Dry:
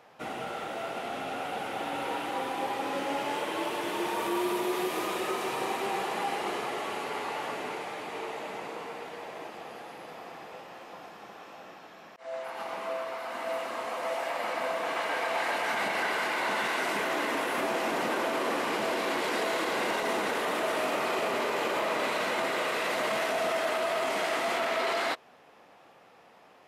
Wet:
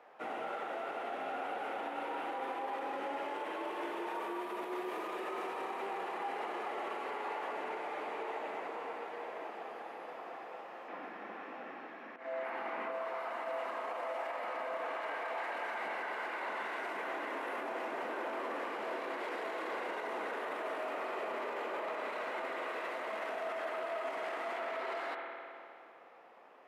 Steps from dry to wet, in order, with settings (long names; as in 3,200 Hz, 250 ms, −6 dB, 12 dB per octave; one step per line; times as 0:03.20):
0:10.88–0:12.92: octave-band graphic EQ 250/2,000/8,000 Hz +12/+7/−5 dB
spring reverb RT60 2.4 s, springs 52 ms, chirp 55 ms, DRR 10 dB
brickwall limiter −28 dBFS, peak gain reduction 11 dB
three-way crossover with the lows and the highs turned down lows −22 dB, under 260 Hz, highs −14 dB, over 2,400 Hz
hum removal 51.16 Hz, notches 31
level −1 dB